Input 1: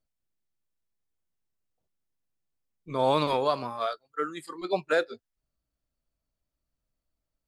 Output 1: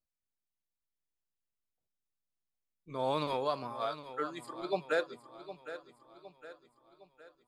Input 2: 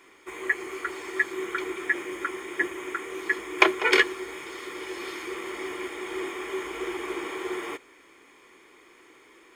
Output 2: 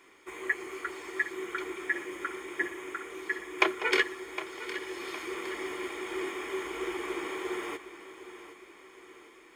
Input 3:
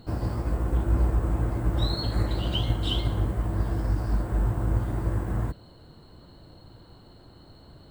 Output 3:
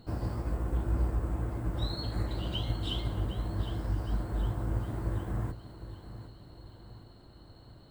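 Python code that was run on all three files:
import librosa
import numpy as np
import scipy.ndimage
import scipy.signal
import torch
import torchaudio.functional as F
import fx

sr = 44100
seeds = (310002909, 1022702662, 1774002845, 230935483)

y = fx.rider(x, sr, range_db=4, speed_s=2.0)
y = fx.echo_feedback(y, sr, ms=761, feedback_pct=47, wet_db=-13)
y = F.gain(torch.from_numpy(y), -6.5).numpy()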